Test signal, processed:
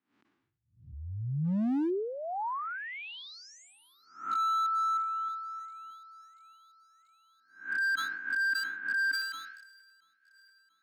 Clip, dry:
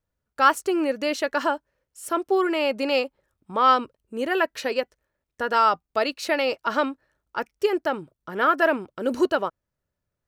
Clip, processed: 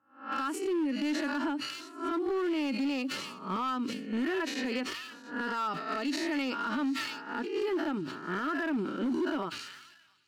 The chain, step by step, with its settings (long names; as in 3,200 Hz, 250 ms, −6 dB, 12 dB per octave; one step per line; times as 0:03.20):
peak hold with a rise ahead of every peak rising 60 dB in 0.43 s
meter weighting curve A
harmonic and percussive parts rebalanced percussive −12 dB
low shelf with overshoot 390 Hz +11 dB, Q 3
low-pass that shuts in the quiet parts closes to 1,500 Hz, open at −21.5 dBFS
downward compressor 20 to 1, threshold −25 dBFS
brickwall limiter −23.5 dBFS
hard clipping −26.5 dBFS
on a send: delay with a high-pass on its return 684 ms, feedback 69%, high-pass 3,600 Hz, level −16 dB
on the sum: level that may fall only so fast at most 47 dB per second